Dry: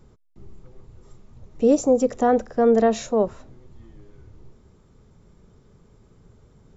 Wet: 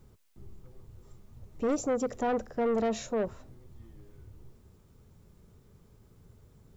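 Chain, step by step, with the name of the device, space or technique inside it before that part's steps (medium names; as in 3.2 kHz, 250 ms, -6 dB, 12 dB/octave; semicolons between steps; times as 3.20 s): open-reel tape (saturation -17.5 dBFS, distortion -11 dB; peaking EQ 86 Hz +5 dB 1.09 oct; white noise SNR 41 dB); trim -6.5 dB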